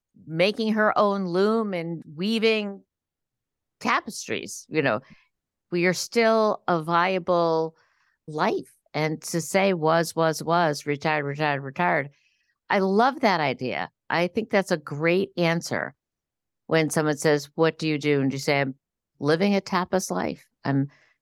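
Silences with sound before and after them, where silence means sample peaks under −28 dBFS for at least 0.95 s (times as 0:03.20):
0:02.71–0:03.82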